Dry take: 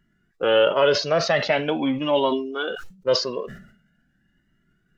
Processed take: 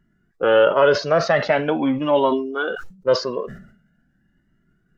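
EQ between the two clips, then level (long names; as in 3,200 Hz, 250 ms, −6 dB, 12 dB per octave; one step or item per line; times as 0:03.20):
parametric band 2,900 Hz −7 dB 1.6 octaves
high-shelf EQ 5,600 Hz −7.5 dB
dynamic equaliser 1,500 Hz, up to +5 dB, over −40 dBFS, Q 1.2
+3.0 dB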